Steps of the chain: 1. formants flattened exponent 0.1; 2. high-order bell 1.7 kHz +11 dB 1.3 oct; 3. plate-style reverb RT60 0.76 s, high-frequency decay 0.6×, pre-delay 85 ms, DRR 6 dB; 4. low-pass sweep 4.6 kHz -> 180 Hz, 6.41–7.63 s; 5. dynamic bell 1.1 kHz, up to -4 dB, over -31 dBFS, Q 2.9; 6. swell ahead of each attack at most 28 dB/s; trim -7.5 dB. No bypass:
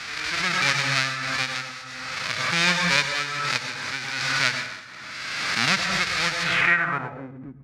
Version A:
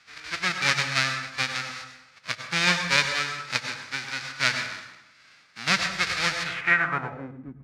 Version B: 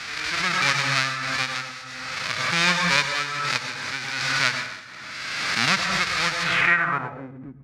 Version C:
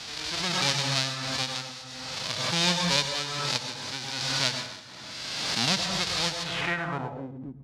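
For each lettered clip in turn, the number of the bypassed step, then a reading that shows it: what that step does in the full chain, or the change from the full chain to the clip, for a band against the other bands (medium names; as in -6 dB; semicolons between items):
6, crest factor change +2.5 dB; 5, 1 kHz band +1.5 dB; 2, 2 kHz band -10.0 dB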